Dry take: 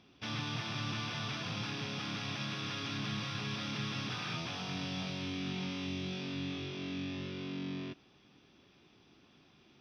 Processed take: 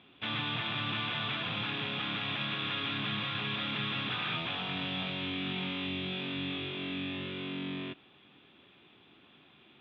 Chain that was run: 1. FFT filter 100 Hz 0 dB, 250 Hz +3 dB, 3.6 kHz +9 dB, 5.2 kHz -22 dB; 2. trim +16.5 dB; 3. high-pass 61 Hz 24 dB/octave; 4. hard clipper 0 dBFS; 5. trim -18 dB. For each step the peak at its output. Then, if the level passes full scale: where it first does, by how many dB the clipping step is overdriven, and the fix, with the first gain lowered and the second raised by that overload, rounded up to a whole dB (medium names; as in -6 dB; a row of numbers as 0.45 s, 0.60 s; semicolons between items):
-20.0 dBFS, -3.5 dBFS, -3.5 dBFS, -3.5 dBFS, -21.5 dBFS; nothing clips